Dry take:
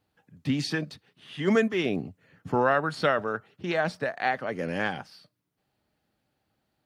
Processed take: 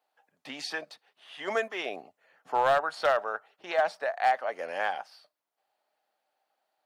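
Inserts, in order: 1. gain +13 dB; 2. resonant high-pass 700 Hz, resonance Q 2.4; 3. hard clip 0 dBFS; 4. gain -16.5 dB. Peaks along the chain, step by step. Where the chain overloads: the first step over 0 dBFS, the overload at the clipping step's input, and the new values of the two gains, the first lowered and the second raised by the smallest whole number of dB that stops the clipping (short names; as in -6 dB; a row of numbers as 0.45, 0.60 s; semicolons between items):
+3.5, +6.0, 0.0, -16.5 dBFS; step 1, 6.0 dB; step 1 +7 dB, step 4 -10.5 dB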